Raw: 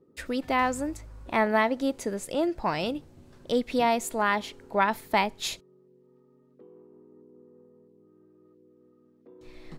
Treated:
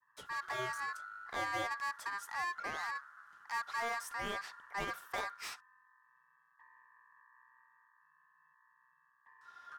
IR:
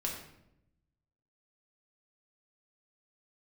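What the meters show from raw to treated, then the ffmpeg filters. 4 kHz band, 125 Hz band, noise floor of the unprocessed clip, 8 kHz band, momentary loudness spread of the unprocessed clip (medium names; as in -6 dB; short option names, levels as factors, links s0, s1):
-11.0 dB, -14.5 dB, -61 dBFS, -11.0 dB, 9 LU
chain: -filter_complex "[0:a]equalizer=f=1000:t=o:w=1:g=-9.5,aeval=exprs='val(0)*sin(2*PI*1400*n/s)':c=same,adynamicequalizer=threshold=0.00631:dfrequency=1400:dqfactor=1:tfrequency=1400:tqfactor=1:attack=5:release=100:ratio=0.375:range=4:mode=boostabove:tftype=bell,acrossover=split=940[s0][s1];[s1]asoftclip=type=tanh:threshold=0.0266[s2];[s0][s2]amix=inputs=2:normalize=0,volume=0.422"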